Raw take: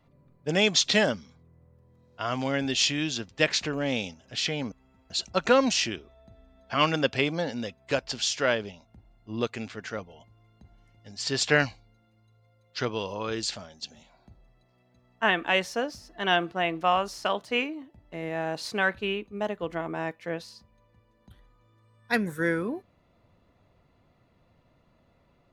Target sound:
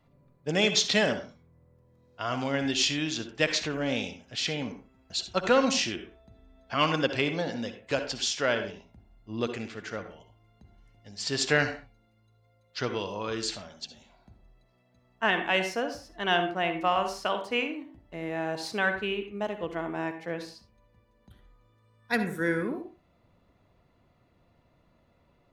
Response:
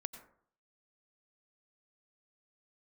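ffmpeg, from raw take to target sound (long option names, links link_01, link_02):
-filter_complex "[0:a]acontrast=21[link_01];[1:a]atrim=start_sample=2205,afade=type=out:start_time=0.4:duration=0.01,atrim=end_sample=18081,asetrate=66150,aresample=44100[link_02];[link_01][link_02]afir=irnorm=-1:irlink=0"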